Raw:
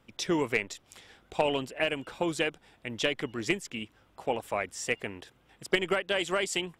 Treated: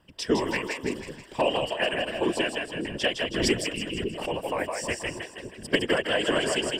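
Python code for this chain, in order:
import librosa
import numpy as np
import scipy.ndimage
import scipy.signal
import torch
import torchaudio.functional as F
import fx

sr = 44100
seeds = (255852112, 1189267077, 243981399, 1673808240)

y = fx.ripple_eq(x, sr, per_octave=1.3, db=10)
y = fx.echo_split(y, sr, split_hz=390.0, low_ms=549, high_ms=160, feedback_pct=52, wet_db=-4)
y = fx.whisperise(y, sr, seeds[0])
y = fx.pre_swell(y, sr, db_per_s=47.0, at=(3.34, 4.29))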